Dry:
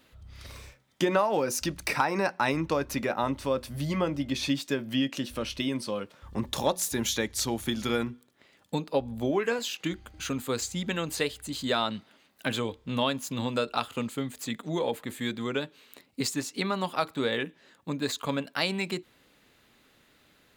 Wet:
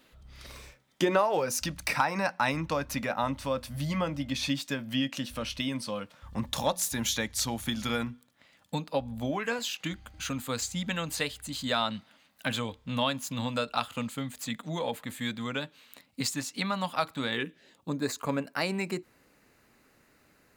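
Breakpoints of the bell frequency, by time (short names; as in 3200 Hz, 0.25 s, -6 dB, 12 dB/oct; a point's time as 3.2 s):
bell -14 dB 0.44 oct
1.07 s 90 Hz
1.5 s 380 Hz
17.21 s 380 Hz
18.08 s 3400 Hz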